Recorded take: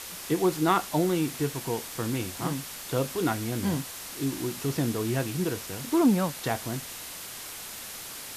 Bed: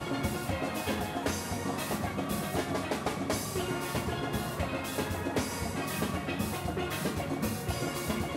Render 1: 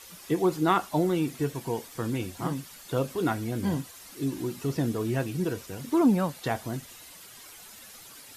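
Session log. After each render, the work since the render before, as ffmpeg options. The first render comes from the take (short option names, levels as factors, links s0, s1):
-af "afftdn=nr=11:nf=-40"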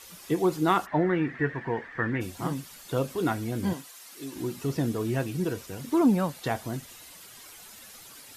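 -filter_complex "[0:a]asplit=3[s0][s1][s2];[s0]afade=t=out:st=0.85:d=0.02[s3];[s1]lowpass=f=1800:t=q:w=9.8,afade=t=in:st=0.85:d=0.02,afade=t=out:st=2.2:d=0.02[s4];[s2]afade=t=in:st=2.2:d=0.02[s5];[s3][s4][s5]amix=inputs=3:normalize=0,asettb=1/sr,asplit=3[s6][s7][s8];[s6]atrim=end=3.734[s9];[s7]atrim=start=3.73:end=4.36,asetpts=PTS-STARTPTS,afade=t=in:d=0.004:c=qsin,afade=t=out:st=0.626:d=0.004:c=qsin,highpass=f=750:p=1[s10];[s8]atrim=start=4.356[s11];[s9][s10]acrossfade=d=0.004:c1=hsin:c2=qsin[s12];[s12][s11]acrossfade=d=0.004:c1=qsin:c2=hsin"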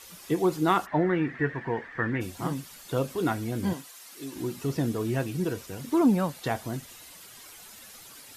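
-af anull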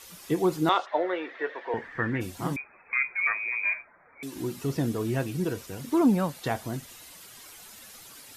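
-filter_complex "[0:a]asettb=1/sr,asplit=3[s0][s1][s2];[s0]atrim=end=0.694[s3];[s1]atrim=start=0.69:end=1.74,asetpts=PTS-STARTPTS,afade=t=in:d=0.004:c=qsin,afade=t=out:st=1.046:d=0.004:c=qsin,highpass=f=420:w=0.5412,highpass=f=420:w=1.3066,equalizer=f=560:t=q:w=4:g=7,equalizer=f=1700:t=q:w=4:g=-5,equalizer=f=3600:t=q:w=4:g=8,lowpass=f=6000:w=0.5412,lowpass=f=6000:w=1.3066[s4];[s2]atrim=start=1.736[s5];[s3][s4]acrossfade=d=0.004:c1=hsin:c2=qsin[s6];[s6][s5]acrossfade=d=0.004:c1=qsin:c2=hsin,asettb=1/sr,asplit=3[s7][s8][s9];[s7]atrim=end=2.564[s10];[s8]atrim=start=2.56:end=4.23,asetpts=PTS-STARTPTS,afade=t=in:d=0.004:c=qsin,afade=t=out:st=1.666:d=0.004:c=qsin,lowpass=f=2200:t=q:w=0.5098,lowpass=f=2200:t=q:w=0.6013,lowpass=f=2200:t=q:w=0.9,lowpass=f=2200:t=q:w=2.563,afreqshift=-2600[s11];[s9]atrim=start=4.226[s12];[s10][s11]acrossfade=d=0.004:c1=hsin:c2=qsin[s13];[s13][s12]acrossfade=d=0.004:c1=qsin:c2=hsin"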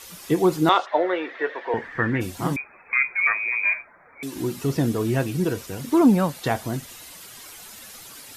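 -af "volume=1.88"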